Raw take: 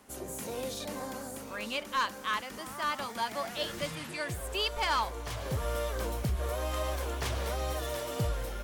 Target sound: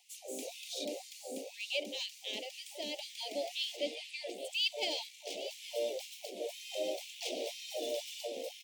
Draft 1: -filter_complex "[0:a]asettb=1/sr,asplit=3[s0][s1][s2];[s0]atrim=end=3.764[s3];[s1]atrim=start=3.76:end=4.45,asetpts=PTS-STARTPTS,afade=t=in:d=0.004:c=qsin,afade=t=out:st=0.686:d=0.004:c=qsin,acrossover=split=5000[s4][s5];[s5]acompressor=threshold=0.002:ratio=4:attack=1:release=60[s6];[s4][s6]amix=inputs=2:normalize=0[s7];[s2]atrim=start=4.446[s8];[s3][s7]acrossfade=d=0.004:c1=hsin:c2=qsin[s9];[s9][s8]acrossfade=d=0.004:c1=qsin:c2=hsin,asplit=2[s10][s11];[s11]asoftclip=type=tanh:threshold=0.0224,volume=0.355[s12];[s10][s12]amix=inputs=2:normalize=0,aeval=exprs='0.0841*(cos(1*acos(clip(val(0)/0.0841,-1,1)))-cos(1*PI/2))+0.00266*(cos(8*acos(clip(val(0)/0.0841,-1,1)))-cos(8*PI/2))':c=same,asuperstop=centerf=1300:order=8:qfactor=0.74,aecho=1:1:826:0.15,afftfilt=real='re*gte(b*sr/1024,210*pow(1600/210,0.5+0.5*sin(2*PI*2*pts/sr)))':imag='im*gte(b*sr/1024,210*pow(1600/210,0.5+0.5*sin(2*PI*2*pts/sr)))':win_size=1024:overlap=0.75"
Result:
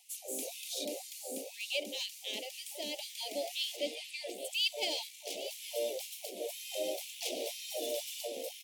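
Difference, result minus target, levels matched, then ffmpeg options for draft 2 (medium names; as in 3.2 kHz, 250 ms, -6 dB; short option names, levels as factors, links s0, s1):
8 kHz band +3.5 dB
-filter_complex "[0:a]asettb=1/sr,asplit=3[s0][s1][s2];[s0]atrim=end=3.764[s3];[s1]atrim=start=3.76:end=4.45,asetpts=PTS-STARTPTS,afade=t=in:d=0.004:c=qsin,afade=t=out:st=0.686:d=0.004:c=qsin,acrossover=split=5000[s4][s5];[s5]acompressor=threshold=0.002:ratio=4:attack=1:release=60[s6];[s4][s6]amix=inputs=2:normalize=0[s7];[s2]atrim=start=4.446[s8];[s3][s7]acrossfade=d=0.004:c1=hsin:c2=qsin[s9];[s9][s8]acrossfade=d=0.004:c1=qsin:c2=hsin,asplit=2[s10][s11];[s11]asoftclip=type=tanh:threshold=0.0224,volume=0.355[s12];[s10][s12]amix=inputs=2:normalize=0,aeval=exprs='0.0841*(cos(1*acos(clip(val(0)/0.0841,-1,1)))-cos(1*PI/2))+0.00266*(cos(8*acos(clip(val(0)/0.0841,-1,1)))-cos(8*PI/2))':c=same,asuperstop=centerf=1300:order=8:qfactor=0.74,equalizer=f=12000:w=0.97:g=-12.5,aecho=1:1:826:0.15,afftfilt=real='re*gte(b*sr/1024,210*pow(1600/210,0.5+0.5*sin(2*PI*2*pts/sr)))':imag='im*gte(b*sr/1024,210*pow(1600/210,0.5+0.5*sin(2*PI*2*pts/sr)))':win_size=1024:overlap=0.75"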